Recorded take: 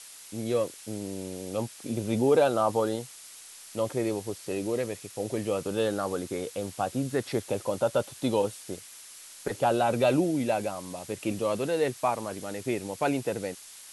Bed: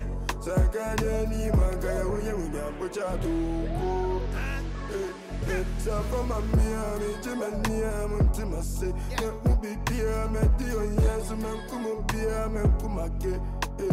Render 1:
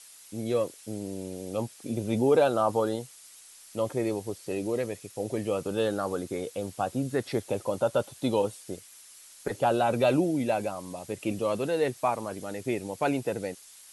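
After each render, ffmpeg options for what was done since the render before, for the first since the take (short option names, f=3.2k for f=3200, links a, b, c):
-af "afftdn=nr=6:nf=-48"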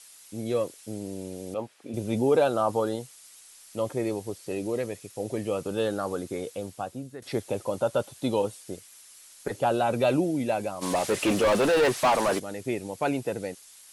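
-filter_complex "[0:a]asettb=1/sr,asplit=3[a][b][c];[a]atrim=end=1.544[d];[b]atrim=start=1.54:end=1.94,asetpts=PTS-STARTPTS,afade=t=in:d=0.004:c=qsin,afade=t=out:st=0.396:d=0.004:c=qsin,bass=f=250:g=-10,treble=f=4k:g=-14[e];[c]atrim=start=1.936[f];[d][e]acrossfade=d=0.004:c1=hsin:c2=qsin[g];[g][f]acrossfade=d=0.004:c1=qsin:c2=hsin,asplit=3[h][i][j];[h]afade=t=out:st=10.81:d=0.02[k];[i]asplit=2[l][m];[m]highpass=f=720:p=1,volume=28dB,asoftclip=type=tanh:threshold=-14.5dB[n];[l][n]amix=inputs=2:normalize=0,lowpass=f=3.5k:p=1,volume=-6dB,afade=t=in:st=10.81:d=0.02,afade=t=out:st=12.38:d=0.02[o];[j]afade=t=in:st=12.38:d=0.02[p];[k][o][p]amix=inputs=3:normalize=0,asplit=2[q][r];[q]atrim=end=7.22,asetpts=PTS-STARTPTS,afade=t=out:st=6.49:d=0.73:silence=0.158489[s];[r]atrim=start=7.22,asetpts=PTS-STARTPTS,afade=t=in:d=0.004:c=hsin:silence=0.158489[t];[s][t]concat=n=2:v=0:a=1"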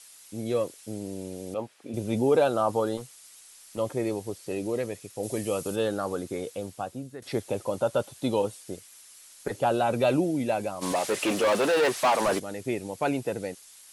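-filter_complex "[0:a]asettb=1/sr,asplit=3[a][b][c];[a]atrim=end=2.974[d];[b]atrim=start=2.97:end=3.78,asetpts=PTS-STARTPTS,afade=t=in:d=0.004:c=qsin,afade=t=out:st=0.806:d=0.004:c=qsin,volume=31.5dB,asoftclip=hard,volume=-31.5dB[e];[c]atrim=start=3.776[f];[d][e]acrossfade=d=0.004:c1=hsin:c2=qsin[g];[g][f]acrossfade=d=0.004:c1=qsin:c2=hsin,asettb=1/sr,asplit=3[h][i][j];[h]atrim=end=5.234[k];[i]atrim=start=5.23:end=5.76,asetpts=PTS-STARTPTS,afade=t=in:d=0.004:c=qsin,afade=t=out:st=0.526:d=0.004:c=qsin,highshelf=f=5.4k:g=12[l];[j]atrim=start=5.756[m];[k][l]acrossfade=d=0.004:c1=hsin:c2=qsin[n];[n][m]acrossfade=d=0.004:c1=qsin:c2=hsin,asettb=1/sr,asplit=3[o][p][q];[o]atrim=end=10.924[r];[p]atrim=start=10.92:end=12.21,asetpts=PTS-STARTPTS,afade=t=in:d=0.004:c=qsin,afade=t=out:st=1.286:d=0.004:c=qsin,highpass=f=290:p=1[s];[q]atrim=start=12.206[t];[r][s]acrossfade=d=0.004:c1=hsin:c2=qsin[u];[u][t]acrossfade=d=0.004:c1=qsin:c2=hsin"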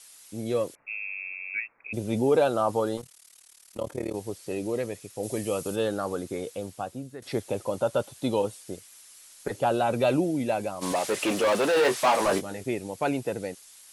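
-filter_complex "[0:a]asettb=1/sr,asplit=3[a][b][c];[a]atrim=end=0.754[d];[b]atrim=start=0.75:end=1.93,asetpts=PTS-STARTPTS,afade=t=in:d=0.004:c=qsin,afade=t=out:st=1.176:d=0.004:c=qsin,lowpass=f=2.4k:t=q:w=0.5098,lowpass=f=2.4k:t=q:w=0.6013,lowpass=f=2.4k:t=q:w=0.9,lowpass=f=2.4k:t=q:w=2.563,afreqshift=-2800[e];[c]atrim=start=1.926[f];[d][e]acrossfade=d=0.004:c1=hsin:c2=qsin[g];[g][f]acrossfade=d=0.004:c1=qsin:c2=hsin,asettb=1/sr,asplit=3[h][i][j];[h]atrim=end=3.014[k];[i]atrim=start=3.01:end=4.15,asetpts=PTS-STARTPTS,afade=t=in:d=0.004:c=qsin,afade=t=out:st=1.136:d=0.004:c=qsin,tremolo=f=37:d=0.919[l];[j]atrim=start=4.146[m];[k][l]acrossfade=d=0.004:c1=hsin:c2=qsin[n];[n][m]acrossfade=d=0.004:c1=qsin:c2=hsin,asettb=1/sr,asplit=3[o][p][q];[o]atrim=end=11.734[r];[p]atrim=start=11.73:end=12.64,asetpts=PTS-STARTPTS,afade=t=in:d=0.004:c=qsin,afade=t=out:st=0.906:d=0.004:c=qsin,asplit=2[s][t];[t]adelay=21,volume=-6.5dB[u];[s][u]amix=inputs=2:normalize=0,atrim=end_sample=40131[v];[q]atrim=start=12.636[w];[r][v]acrossfade=d=0.004:c1=hsin:c2=qsin[x];[x][w]acrossfade=d=0.004:c1=qsin:c2=hsin"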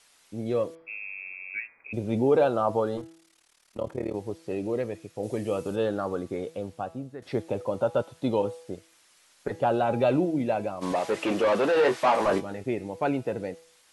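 -af "aemphasis=mode=reproduction:type=75fm,bandreject=f=164.2:t=h:w=4,bandreject=f=328.4:t=h:w=4,bandreject=f=492.6:t=h:w=4,bandreject=f=656.8:t=h:w=4,bandreject=f=821:t=h:w=4,bandreject=f=985.2:t=h:w=4,bandreject=f=1.1494k:t=h:w=4,bandreject=f=1.3136k:t=h:w=4,bandreject=f=1.4778k:t=h:w=4,bandreject=f=1.642k:t=h:w=4,bandreject=f=1.8062k:t=h:w=4,bandreject=f=1.9704k:t=h:w=4,bandreject=f=2.1346k:t=h:w=4,bandreject=f=2.2988k:t=h:w=4,bandreject=f=2.463k:t=h:w=4,bandreject=f=2.6272k:t=h:w=4,bandreject=f=2.7914k:t=h:w=4,bandreject=f=2.9556k:t=h:w=4,bandreject=f=3.1198k:t=h:w=4,bandreject=f=3.284k:t=h:w=4,bandreject=f=3.4482k:t=h:w=4,bandreject=f=3.6124k:t=h:w=4,bandreject=f=3.7766k:t=h:w=4,bandreject=f=3.9408k:t=h:w=4,bandreject=f=4.105k:t=h:w=4,bandreject=f=4.2692k:t=h:w=4,bandreject=f=4.4334k:t=h:w=4,bandreject=f=4.5976k:t=h:w=4,bandreject=f=4.7618k:t=h:w=4,bandreject=f=4.926k:t=h:w=4,bandreject=f=5.0902k:t=h:w=4,bandreject=f=5.2544k:t=h:w=4,bandreject=f=5.4186k:t=h:w=4,bandreject=f=5.5828k:t=h:w=4,bandreject=f=5.747k:t=h:w=4"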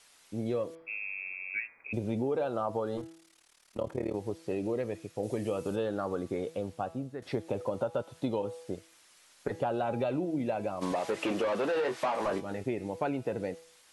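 -af "acompressor=threshold=-28dB:ratio=6"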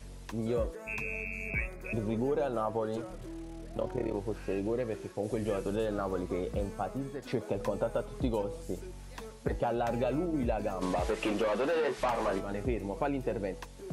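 -filter_complex "[1:a]volume=-15.5dB[a];[0:a][a]amix=inputs=2:normalize=0"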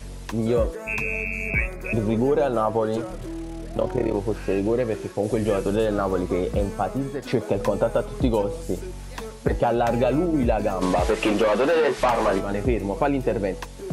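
-af "volume=10dB"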